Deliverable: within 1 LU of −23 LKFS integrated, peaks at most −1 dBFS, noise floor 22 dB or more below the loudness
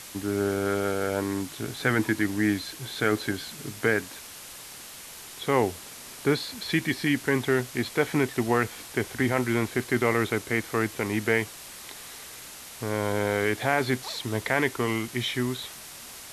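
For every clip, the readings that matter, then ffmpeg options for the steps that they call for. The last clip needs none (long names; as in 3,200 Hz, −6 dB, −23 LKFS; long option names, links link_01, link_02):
background noise floor −43 dBFS; target noise floor −49 dBFS; integrated loudness −27.0 LKFS; sample peak −8.5 dBFS; target loudness −23.0 LKFS
→ -af "afftdn=noise_reduction=6:noise_floor=-43"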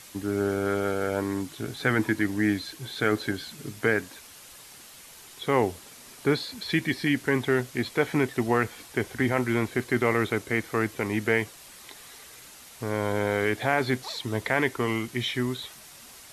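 background noise floor −48 dBFS; target noise floor −49 dBFS
→ -af "afftdn=noise_reduction=6:noise_floor=-48"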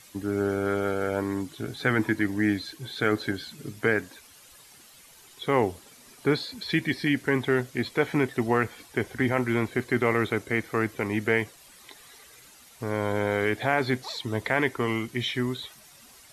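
background noise floor −53 dBFS; integrated loudness −27.5 LKFS; sample peak −8.5 dBFS; target loudness −23.0 LKFS
→ -af "volume=4.5dB"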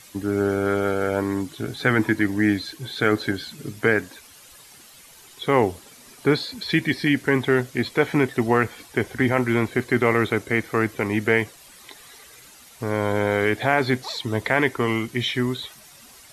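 integrated loudness −23.0 LKFS; sample peak −4.0 dBFS; background noise floor −48 dBFS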